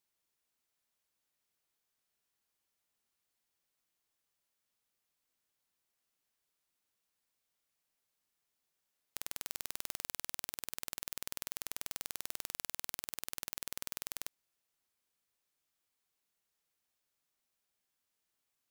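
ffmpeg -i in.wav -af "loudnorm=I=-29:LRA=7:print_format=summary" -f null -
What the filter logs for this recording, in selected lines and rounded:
Input Integrated:    -41.9 LUFS
Input True Peak:     -11.1 dBTP
Input LRA:             5.7 LU
Input Threshold:     -51.9 LUFS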